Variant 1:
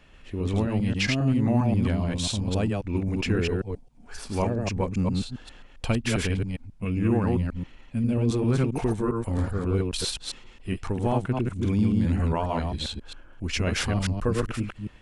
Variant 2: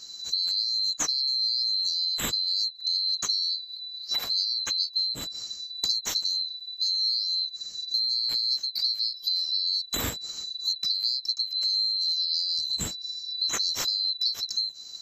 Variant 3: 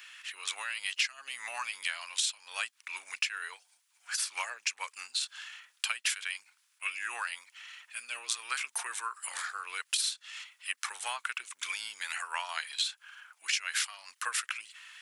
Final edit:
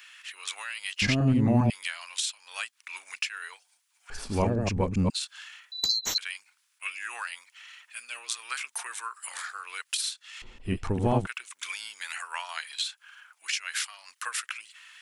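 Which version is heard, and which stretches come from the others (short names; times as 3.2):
3
1.02–1.7 from 1
4.1–5.1 from 1
5.72–6.18 from 2
10.42–11.27 from 1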